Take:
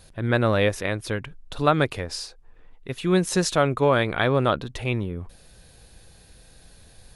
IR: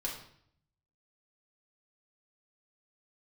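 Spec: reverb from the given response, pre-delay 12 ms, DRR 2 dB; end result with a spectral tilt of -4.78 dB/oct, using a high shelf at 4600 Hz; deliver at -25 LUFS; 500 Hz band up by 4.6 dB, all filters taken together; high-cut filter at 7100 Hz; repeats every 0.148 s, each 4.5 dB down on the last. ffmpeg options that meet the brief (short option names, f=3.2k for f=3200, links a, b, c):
-filter_complex "[0:a]lowpass=7.1k,equalizer=f=500:t=o:g=5.5,highshelf=f=4.6k:g=4,aecho=1:1:148|296|444|592|740|888|1036|1184|1332:0.596|0.357|0.214|0.129|0.0772|0.0463|0.0278|0.0167|0.01,asplit=2[a][b];[1:a]atrim=start_sample=2205,adelay=12[c];[b][c]afir=irnorm=-1:irlink=0,volume=-4dB[d];[a][d]amix=inputs=2:normalize=0,volume=-8.5dB"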